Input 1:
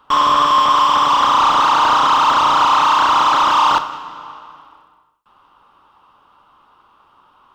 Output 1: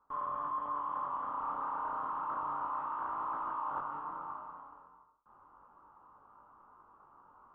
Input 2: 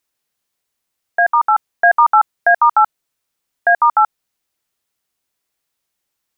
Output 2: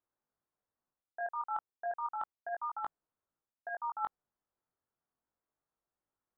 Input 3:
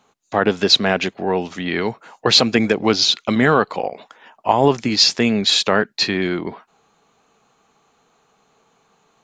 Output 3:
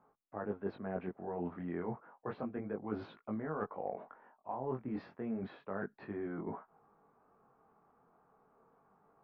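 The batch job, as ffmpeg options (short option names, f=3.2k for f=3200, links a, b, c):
-af "lowpass=f=1.4k:w=0.5412,lowpass=f=1.4k:w=1.3066,areverse,acompressor=threshold=-30dB:ratio=5,areverse,flanger=delay=18.5:depth=4.8:speed=0.31,volume=-4.5dB"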